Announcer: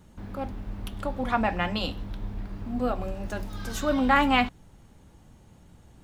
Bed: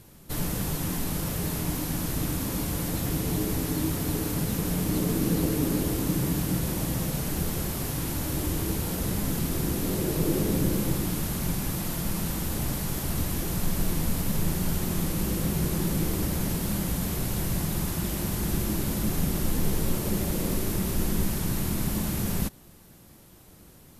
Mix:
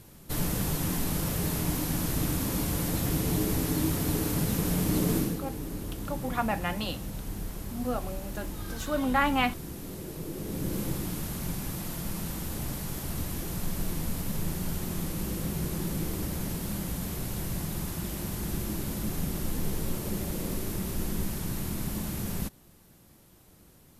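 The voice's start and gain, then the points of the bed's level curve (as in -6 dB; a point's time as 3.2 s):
5.05 s, -4.0 dB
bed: 5.18 s 0 dB
5.42 s -12 dB
10.34 s -12 dB
10.79 s -5 dB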